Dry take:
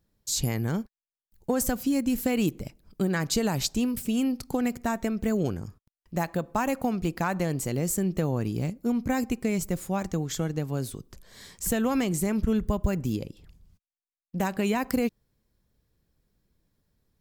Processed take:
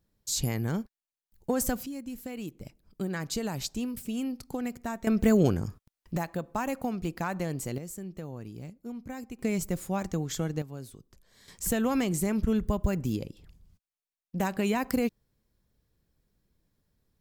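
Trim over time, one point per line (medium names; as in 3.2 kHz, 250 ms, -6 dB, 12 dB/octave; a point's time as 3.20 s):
-2 dB
from 1.86 s -13 dB
from 2.61 s -6.5 dB
from 5.07 s +4.5 dB
from 6.17 s -4.5 dB
from 7.78 s -13 dB
from 9.39 s -2 dB
from 10.62 s -11 dB
from 11.48 s -1.5 dB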